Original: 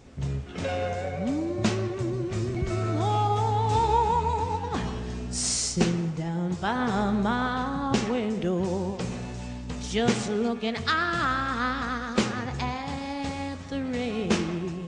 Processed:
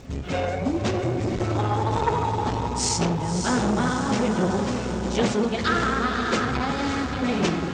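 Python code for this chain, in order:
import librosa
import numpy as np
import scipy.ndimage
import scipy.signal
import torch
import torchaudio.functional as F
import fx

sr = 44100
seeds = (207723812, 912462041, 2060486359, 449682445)

p1 = scipy.signal.sosfilt(scipy.signal.butter(4, 8300.0, 'lowpass', fs=sr, output='sos'), x)
p2 = fx.rider(p1, sr, range_db=4, speed_s=2.0)
p3 = p1 + F.gain(torch.from_numpy(p2), 2.5).numpy()
p4 = fx.dmg_crackle(p3, sr, seeds[0], per_s=53.0, level_db=-41.0)
p5 = fx.stretch_vocoder_free(p4, sr, factor=0.52)
p6 = fx.echo_diffused(p5, sr, ms=577, feedback_pct=53, wet_db=-6.0)
y = fx.transformer_sat(p6, sr, knee_hz=750.0)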